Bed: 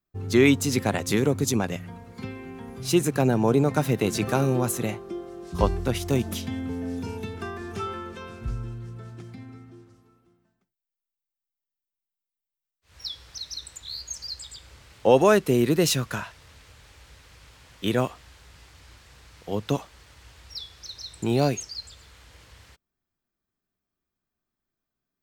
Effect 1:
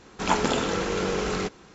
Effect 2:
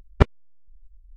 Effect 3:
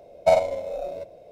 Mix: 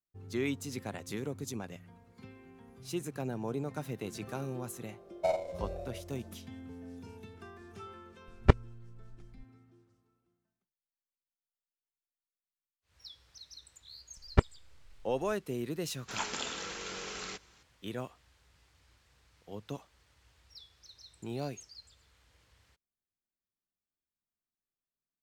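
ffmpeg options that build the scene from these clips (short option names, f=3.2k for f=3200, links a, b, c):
-filter_complex "[2:a]asplit=2[a][b];[0:a]volume=-15.5dB[c];[a]aresample=22050,aresample=44100[d];[1:a]tiltshelf=f=1.2k:g=-8[e];[3:a]atrim=end=1.31,asetpts=PTS-STARTPTS,volume=-12.5dB,afade=t=in:d=0.004:c=hsin,afade=t=out:st=1.306:d=0.004:c=hsin,adelay=219177S[f];[d]atrim=end=1.16,asetpts=PTS-STARTPTS,volume=-4.5dB,afade=t=in:d=0.004:c=hsin,afade=t=out:st=1.156:d=0.004:c=hsin,adelay=8280[g];[b]atrim=end=1.16,asetpts=PTS-STARTPTS,volume=-7.5dB,afade=t=in:d=0.004:c=hsin,afade=t=out:st=1.156:d=0.004:c=hsin,adelay=14170[h];[e]atrim=end=1.74,asetpts=PTS-STARTPTS,volume=-13dB,afade=t=in:d=0.004:c=hsin,afade=t=out:st=1.736:d=0.004:c=hsin,adelay=15890[i];[c][f][g][h][i]amix=inputs=5:normalize=0"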